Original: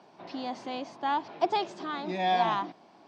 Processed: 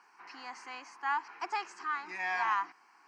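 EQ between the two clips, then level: high-pass 1 kHz 12 dB/octave; static phaser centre 1.5 kHz, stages 4; +5.0 dB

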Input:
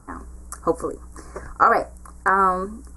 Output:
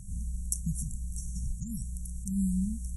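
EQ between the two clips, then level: brick-wall FIR band-stop 220–5500 Hz; +5.5 dB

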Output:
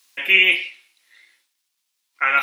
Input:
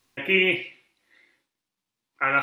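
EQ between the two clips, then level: high-pass 1.3 kHz 6 dB/octave; treble shelf 2.4 kHz +10.5 dB; +3.5 dB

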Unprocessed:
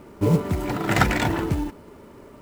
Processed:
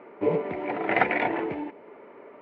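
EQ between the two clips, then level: dynamic bell 1.3 kHz, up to -8 dB, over -54 dBFS, Q 2; cabinet simulation 390–2400 Hz, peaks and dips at 460 Hz +4 dB, 720 Hz +4 dB, 2.2 kHz +6 dB; 0.0 dB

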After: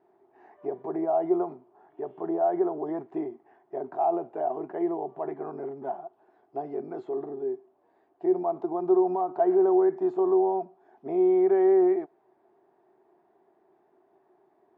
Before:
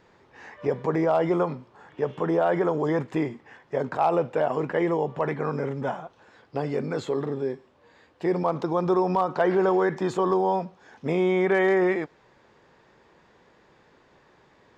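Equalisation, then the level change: two resonant band-passes 510 Hz, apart 0.86 oct; +2.5 dB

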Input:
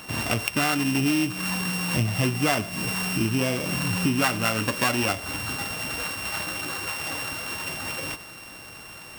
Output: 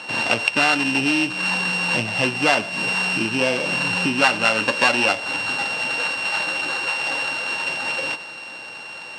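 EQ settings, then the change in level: cabinet simulation 190–8400 Hz, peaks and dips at 530 Hz +7 dB, 870 Hz +9 dB, 1.6 kHz +6 dB, 2.7 kHz +8 dB, 4.2 kHz +9 dB; +1.0 dB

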